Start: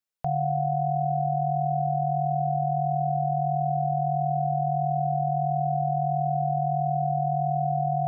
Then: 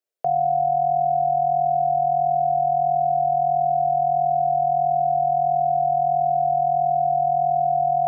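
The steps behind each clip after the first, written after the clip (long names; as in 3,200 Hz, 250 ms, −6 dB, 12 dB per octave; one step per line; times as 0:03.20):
high-pass filter 230 Hz 12 dB per octave
flat-topped bell 500 Hz +11.5 dB 1.2 octaves
level −1.5 dB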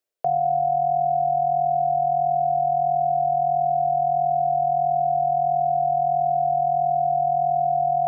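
reversed playback
upward compression, threshold −25 dBFS
reversed playback
spring reverb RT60 2.7 s, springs 42 ms, chirp 65 ms, DRR 8.5 dB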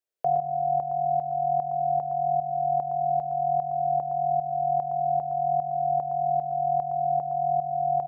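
shaped tremolo saw up 2.5 Hz, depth 65%
single-tap delay 114 ms −8.5 dB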